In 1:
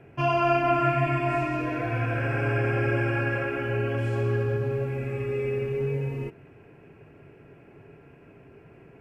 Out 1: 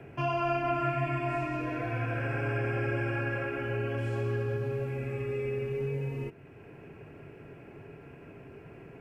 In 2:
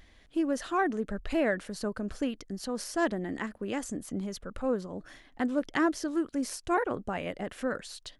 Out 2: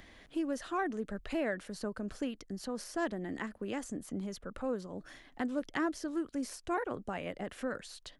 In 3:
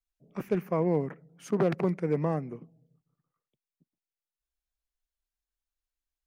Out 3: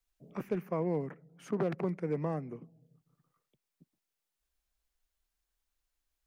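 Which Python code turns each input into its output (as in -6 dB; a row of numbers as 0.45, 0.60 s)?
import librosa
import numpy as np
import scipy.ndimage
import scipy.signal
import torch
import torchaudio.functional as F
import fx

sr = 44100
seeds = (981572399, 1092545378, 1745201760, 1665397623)

y = fx.band_squash(x, sr, depth_pct=40)
y = y * 10.0 ** (-5.5 / 20.0)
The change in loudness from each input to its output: -5.5, -5.5, -6.0 LU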